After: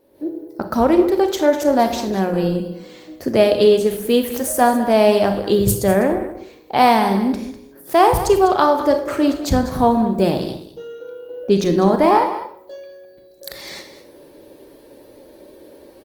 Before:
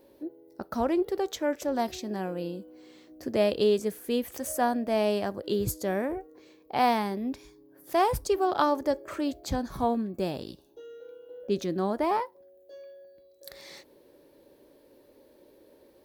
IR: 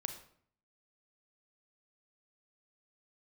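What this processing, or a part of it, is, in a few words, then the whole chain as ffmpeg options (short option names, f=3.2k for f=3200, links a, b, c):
speakerphone in a meeting room: -filter_complex "[0:a]asettb=1/sr,asplit=3[a][b][c];[a]atrim=end=5.184[d];[b]atrim=start=5.18:end=7.07,asetpts=PTS-STARTPTS,afade=t=in:d=0.004:c=qsin,afade=t=out:st=1.886:d=0.004:c=qsin,adynamicequalizer=threshold=0.00126:dfrequency=8400:dqfactor=4.3:tfrequency=8400:tqfactor=4.3:attack=5:release=100:ratio=0.375:range=2.5:mode=boostabove:tftype=bell[e];[c]atrim=start=7.066[f];[d][e]acrossfade=d=0.004:c1=hsin:c2=qsin[g];[g][f]acrossfade=d=0.004:c1=qsin:c2=hsin,aecho=1:1:200:0.211[h];[1:a]atrim=start_sample=2205[i];[h][i]afir=irnorm=-1:irlink=0,dynaudnorm=f=130:g=3:m=13dB,volume=1dB" -ar 48000 -c:a libopus -b:a 24k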